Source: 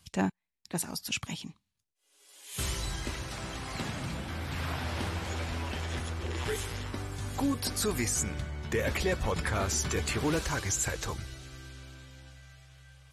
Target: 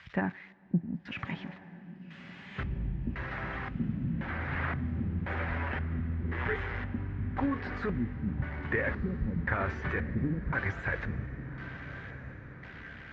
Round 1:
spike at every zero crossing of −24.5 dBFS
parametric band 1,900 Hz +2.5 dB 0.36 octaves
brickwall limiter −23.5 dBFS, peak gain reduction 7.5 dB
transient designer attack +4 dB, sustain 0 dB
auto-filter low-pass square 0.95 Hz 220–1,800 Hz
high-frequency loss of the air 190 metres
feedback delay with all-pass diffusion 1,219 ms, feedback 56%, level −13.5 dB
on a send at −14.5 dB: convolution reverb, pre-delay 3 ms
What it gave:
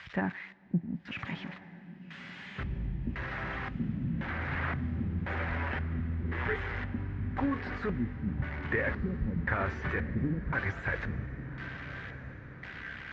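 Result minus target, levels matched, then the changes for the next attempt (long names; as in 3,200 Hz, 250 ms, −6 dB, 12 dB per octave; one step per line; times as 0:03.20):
spike at every zero crossing: distortion +6 dB
change: spike at every zero crossing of −30.5 dBFS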